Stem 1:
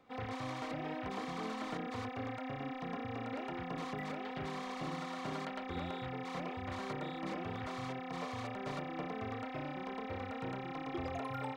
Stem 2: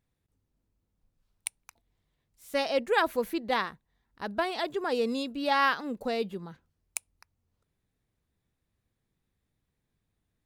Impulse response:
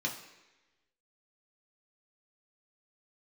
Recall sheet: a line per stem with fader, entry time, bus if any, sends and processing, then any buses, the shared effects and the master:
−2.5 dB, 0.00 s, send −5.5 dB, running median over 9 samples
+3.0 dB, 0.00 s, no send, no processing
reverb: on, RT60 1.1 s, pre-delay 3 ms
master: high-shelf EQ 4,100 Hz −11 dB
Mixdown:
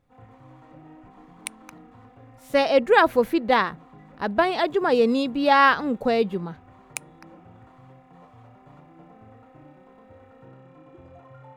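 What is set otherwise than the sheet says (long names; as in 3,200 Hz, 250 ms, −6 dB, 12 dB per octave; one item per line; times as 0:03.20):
stem 1 −2.5 dB → −9.5 dB
stem 2 +3.0 dB → +9.5 dB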